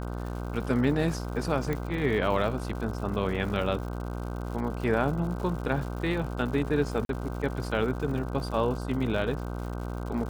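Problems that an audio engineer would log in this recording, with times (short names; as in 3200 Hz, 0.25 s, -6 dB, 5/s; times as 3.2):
buzz 60 Hz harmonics 26 -34 dBFS
crackle 170/s -37 dBFS
1.73 pop -18 dBFS
7.05–7.09 gap 42 ms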